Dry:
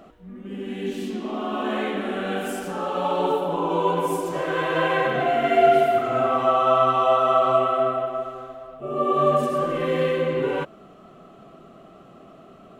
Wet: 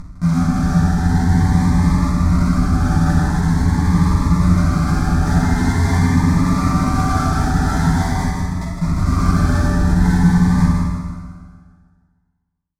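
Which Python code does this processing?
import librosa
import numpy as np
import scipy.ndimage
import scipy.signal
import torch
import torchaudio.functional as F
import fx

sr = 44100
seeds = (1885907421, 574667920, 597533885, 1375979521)

p1 = fx.riaa(x, sr, side='playback')
p2 = fx.dereverb_blind(p1, sr, rt60_s=1.2)
p3 = fx.rider(p2, sr, range_db=4, speed_s=0.5)
p4 = fx.fold_sine(p3, sr, drive_db=18, ceiling_db=-8.0)
p5 = fx.robotise(p4, sr, hz=84.1)
p6 = fx.schmitt(p5, sr, flips_db=-16.0)
p7 = fx.air_absorb(p6, sr, metres=64.0)
p8 = fx.fixed_phaser(p7, sr, hz=1200.0, stages=4)
p9 = p8 + fx.echo_single(p8, sr, ms=156, db=-6.5, dry=0)
p10 = fx.rev_fdn(p9, sr, rt60_s=1.8, lf_ratio=1.0, hf_ratio=0.85, size_ms=34.0, drr_db=-8.0)
p11 = fx.notch_cascade(p10, sr, direction='rising', hz=0.45)
y = F.gain(torch.from_numpy(p11), -8.0).numpy()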